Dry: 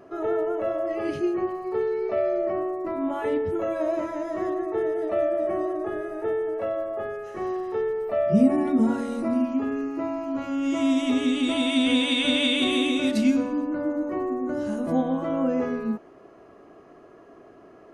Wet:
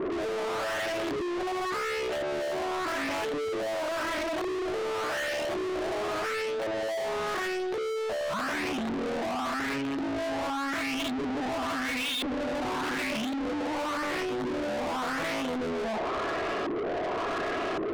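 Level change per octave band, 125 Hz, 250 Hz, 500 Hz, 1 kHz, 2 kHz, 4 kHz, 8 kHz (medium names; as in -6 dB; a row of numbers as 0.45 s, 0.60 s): -6.5 dB, -9.0 dB, -4.5 dB, +2.0 dB, +2.5 dB, -5.5 dB, +2.5 dB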